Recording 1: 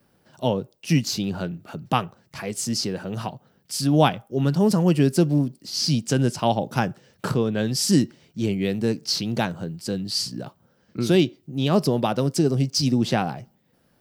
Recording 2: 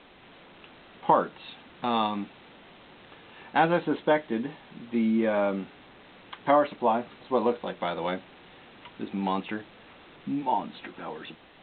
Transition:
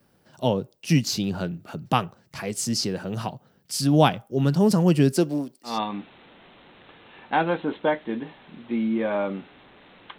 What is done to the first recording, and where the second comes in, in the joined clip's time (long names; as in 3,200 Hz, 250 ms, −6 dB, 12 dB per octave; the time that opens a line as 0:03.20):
recording 1
0:05.12–0:05.79: high-pass filter 200 Hz → 760 Hz
0:05.71: continue with recording 2 from 0:01.94, crossfade 0.16 s